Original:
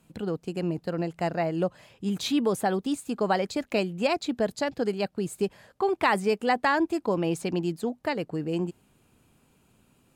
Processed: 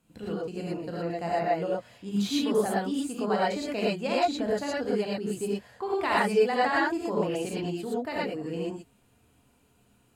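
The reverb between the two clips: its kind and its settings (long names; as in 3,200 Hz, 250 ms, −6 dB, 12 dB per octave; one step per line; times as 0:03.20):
reverb whose tail is shaped and stops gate 140 ms rising, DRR −6.5 dB
level −8 dB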